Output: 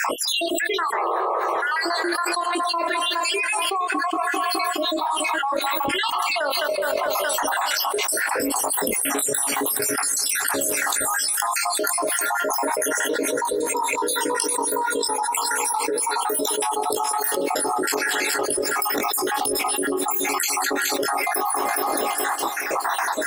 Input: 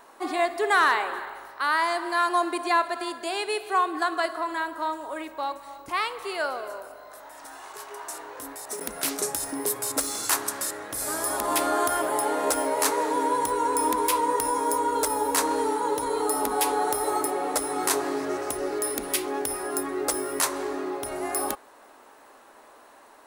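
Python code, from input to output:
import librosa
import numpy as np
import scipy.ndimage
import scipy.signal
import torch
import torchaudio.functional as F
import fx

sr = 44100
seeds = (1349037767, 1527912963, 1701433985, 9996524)

y = fx.spec_dropout(x, sr, seeds[0], share_pct=75)
y = fx.low_shelf(y, sr, hz=140.0, db=-11.5)
y = fx.spec_paint(y, sr, seeds[1], shape='noise', start_s=0.93, length_s=0.47, low_hz=340.0, high_hz=1300.0, level_db=-25.0)
y = fx.doubler(y, sr, ms=21.0, db=-9.0)
y = fx.echo_heads(y, sr, ms=209, heads='first and second', feedback_pct=50, wet_db=-22.5)
y = fx.env_flatten(y, sr, amount_pct=100)
y = y * librosa.db_to_amplitude(-4.5)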